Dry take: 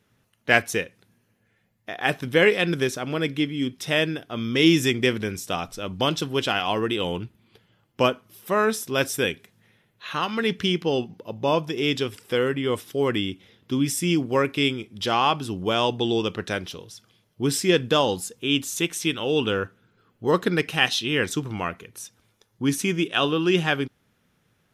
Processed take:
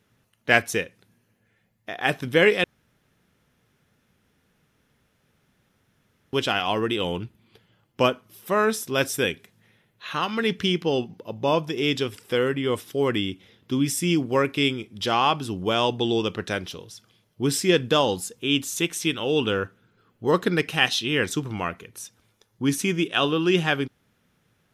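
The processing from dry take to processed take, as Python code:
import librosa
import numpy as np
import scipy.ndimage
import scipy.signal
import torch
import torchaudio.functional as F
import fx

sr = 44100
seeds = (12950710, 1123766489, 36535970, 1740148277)

y = fx.edit(x, sr, fx.room_tone_fill(start_s=2.64, length_s=3.69), tone=tone)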